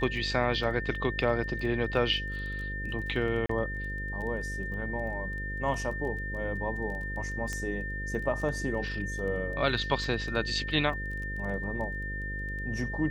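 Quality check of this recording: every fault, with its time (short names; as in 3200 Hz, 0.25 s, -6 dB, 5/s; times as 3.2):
buzz 50 Hz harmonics 11 -37 dBFS
crackle 15/s -38 dBFS
tone 1800 Hz -36 dBFS
3.46–3.49 gap 34 ms
7.53 pop -21 dBFS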